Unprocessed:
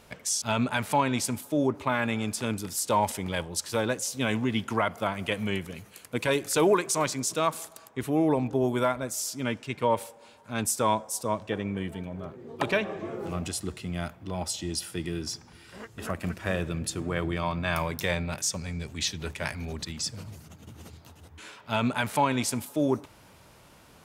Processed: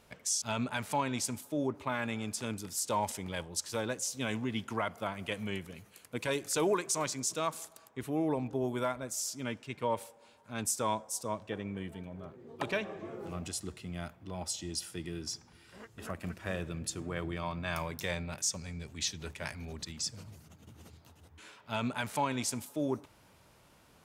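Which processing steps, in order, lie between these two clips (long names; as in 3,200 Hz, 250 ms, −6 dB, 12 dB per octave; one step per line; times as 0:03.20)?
dynamic equaliser 6,500 Hz, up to +5 dB, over −44 dBFS, Q 1.2
level −7.5 dB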